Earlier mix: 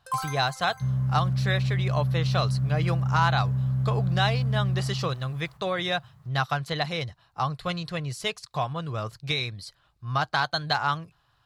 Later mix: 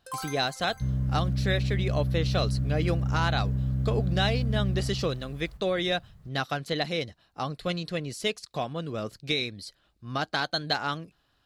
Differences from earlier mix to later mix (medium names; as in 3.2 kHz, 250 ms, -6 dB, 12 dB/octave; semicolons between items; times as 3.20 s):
second sound: remove high-pass 140 Hz 12 dB/octave; master: add graphic EQ 125/250/500/1000 Hz -10/+10/+3/-9 dB